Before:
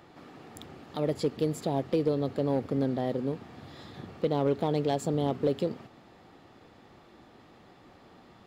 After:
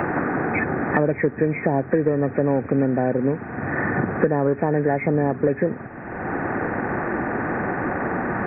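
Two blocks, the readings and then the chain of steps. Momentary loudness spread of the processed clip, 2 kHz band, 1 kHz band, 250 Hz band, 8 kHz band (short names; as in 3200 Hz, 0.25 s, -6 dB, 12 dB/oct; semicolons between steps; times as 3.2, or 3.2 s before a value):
5 LU, +24.0 dB, +12.0 dB, +9.5 dB, under -30 dB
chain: nonlinear frequency compression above 1400 Hz 4:1; three-band squash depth 100%; gain +8 dB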